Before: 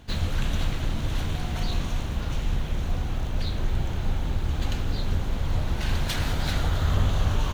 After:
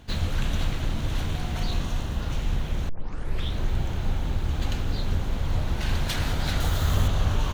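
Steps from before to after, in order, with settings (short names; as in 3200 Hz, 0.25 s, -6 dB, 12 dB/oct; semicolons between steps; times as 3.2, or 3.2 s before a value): 1.79–2.26 notch 2300 Hz, Q 12; 2.89 tape start 0.67 s; 6.6–7.08 high shelf 6200 Hz +12 dB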